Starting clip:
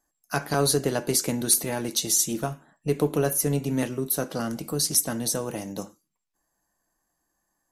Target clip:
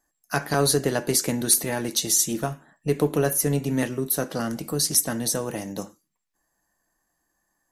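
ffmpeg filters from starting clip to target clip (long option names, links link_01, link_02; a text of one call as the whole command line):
ffmpeg -i in.wav -af "equalizer=frequency=1800:width_type=o:width=0.22:gain=5.5,volume=1.5dB" out.wav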